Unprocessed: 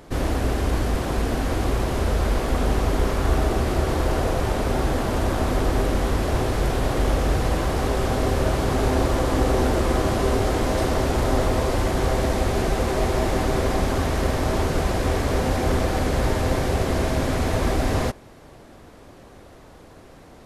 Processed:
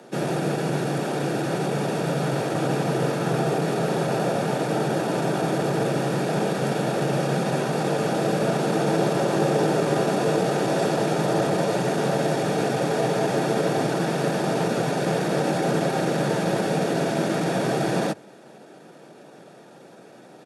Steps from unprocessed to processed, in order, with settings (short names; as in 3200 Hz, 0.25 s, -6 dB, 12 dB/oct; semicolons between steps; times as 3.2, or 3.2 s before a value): notch comb 1100 Hz; pitch shift -2 st; frequency shift +96 Hz; gain +1 dB